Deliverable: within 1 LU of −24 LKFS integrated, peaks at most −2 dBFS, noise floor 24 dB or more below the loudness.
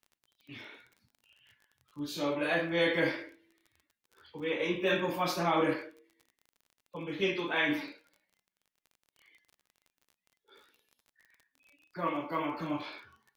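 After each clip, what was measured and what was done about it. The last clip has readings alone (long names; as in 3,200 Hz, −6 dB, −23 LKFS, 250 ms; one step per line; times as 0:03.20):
crackle rate 28 per second; integrated loudness −32.0 LKFS; sample peak −16.0 dBFS; target loudness −24.0 LKFS
→ click removal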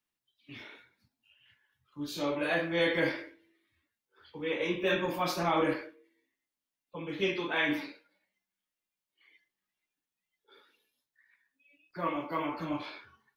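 crackle rate 0 per second; integrated loudness −32.0 LKFS; sample peak −16.0 dBFS; target loudness −24.0 LKFS
→ level +8 dB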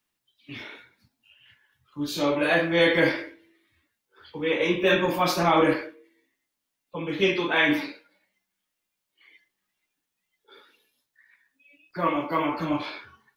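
integrated loudness −24.0 LKFS; sample peak −8.0 dBFS; background noise floor −83 dBFS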